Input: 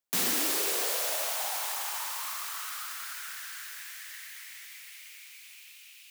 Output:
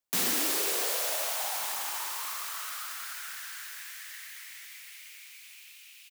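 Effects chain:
slap from a distant wall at 250 metres, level −25 dB

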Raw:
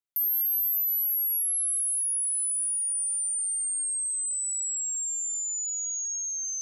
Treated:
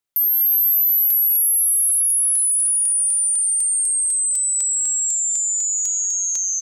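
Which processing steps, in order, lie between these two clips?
on a send: repeating echo 245 ms, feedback 57%, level −5.5 dB
on the sum: regular buffer underruns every 0.25 s, samples 128, repeat, from 0:00.85
level +8.5 dB

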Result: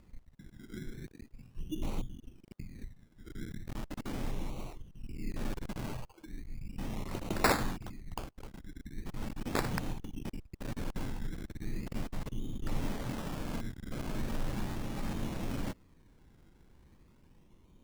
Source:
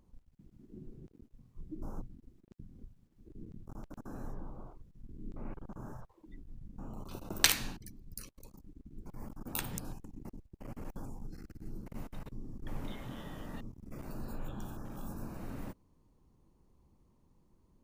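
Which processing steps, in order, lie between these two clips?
sample-and-hold swept by an LFO 19×, swing 60% 0.38 Hz
soft clipping −24 dBFS, distortion −12 dB
level +6.5 dB

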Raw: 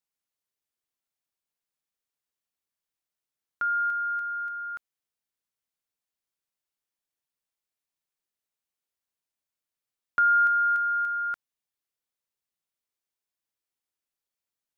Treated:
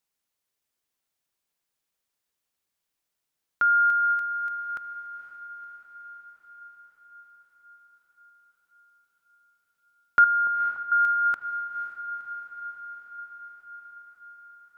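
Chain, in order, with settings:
0:10.24–0:10.92: Butterworth low-pass 1,200 Hz 36 dB per octave
feedback delay with all-pass diffusion 499 ms, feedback 68%, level −10.5 dB
level +6 dB

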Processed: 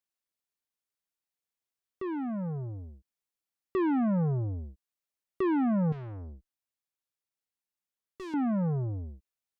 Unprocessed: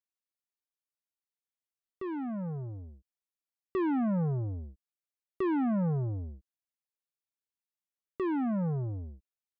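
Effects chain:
0:05.92–0:08.34: tube saturation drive 41 dB, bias 0.45
level +2 dB

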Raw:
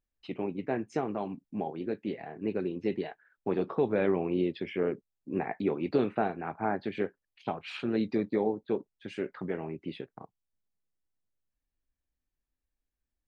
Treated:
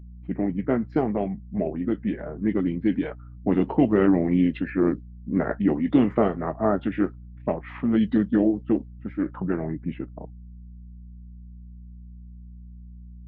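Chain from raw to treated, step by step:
low-pass that shuts in the quiet parts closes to 660 Hz, open at −24.5 dBFS
mains hum 60 Hz, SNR 17 dB
formants moved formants −4 semitones
level +8.5 dB

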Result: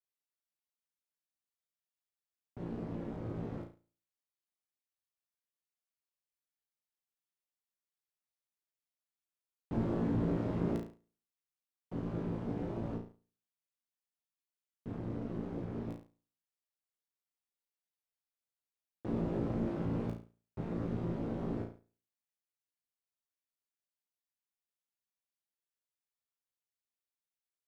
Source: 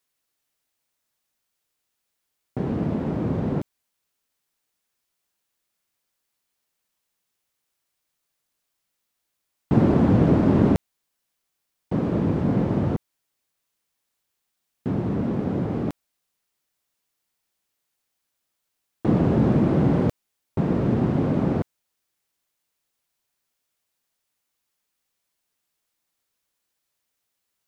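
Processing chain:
tuned comb filter 57 Hz, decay 0.43 s, harmonics all, mix 100%
amplitude modulation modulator 200 Hz, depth 50%
leveller curve on the samples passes 1
level −7 dB

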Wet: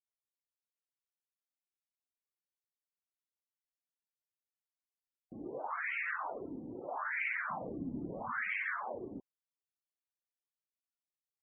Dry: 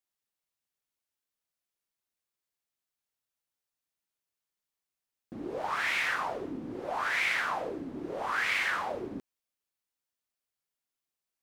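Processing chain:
0:07.50–0:08.65: low shelf with overshoot 290 Hz +8 dB, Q 1.5
spectral peaks only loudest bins 32
level −6 dB

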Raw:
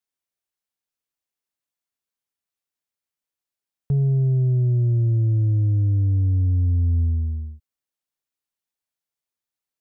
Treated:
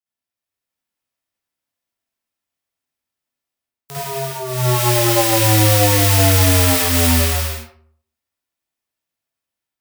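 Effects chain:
spectral envelope flattened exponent 0.1
automatic gain control gain up to 5.5 dB
convolution reverb RT60 0.55 s, pre-delay 48 ms, DRR −10 dB
level −8.5 dB

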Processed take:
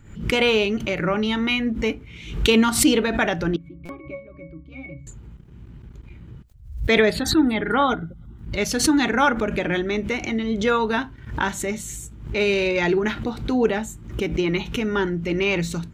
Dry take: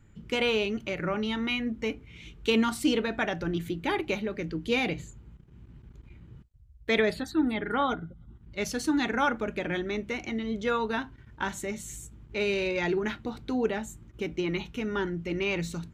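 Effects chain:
0:03.56–0:05.07: resonances in every octave C#, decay 0.27 s
buffer that repeats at 0:03.85, samples 256, times 6
background raised ahead of every attack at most 99 dB per second
level +7.5 dB

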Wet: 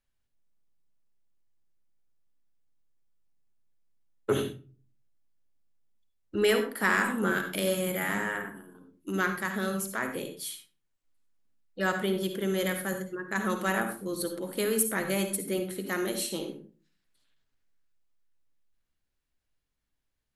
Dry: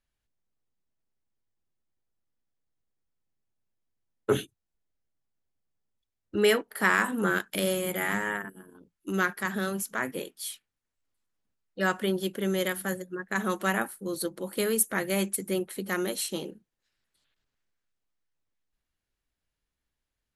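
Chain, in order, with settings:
convolution reverb RT60 0.35 s, pre-delay 53 ms, DRR 6.5 dB
in parallel at −5.5 dB: soft clipping −18.5 dBFS, distortion −15 dB
on the sum: level −5 dB

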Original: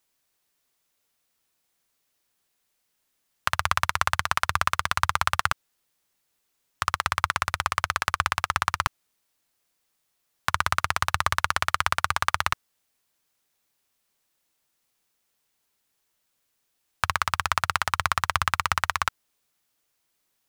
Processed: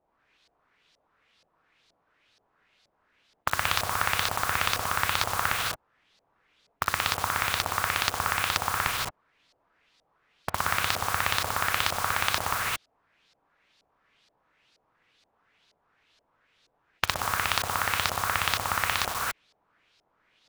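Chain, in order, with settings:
reverb whose tail is shaped and stops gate 240 ms rising, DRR 1.5 dB
auto-filter low-pass saw up 2.1 Hz 600–4,800 Hz
in parallel at −6.5 dB: bit reduction 5 bits
on the sum: every bin compressed towards the loudest bin 2 to 1
level −6 dB

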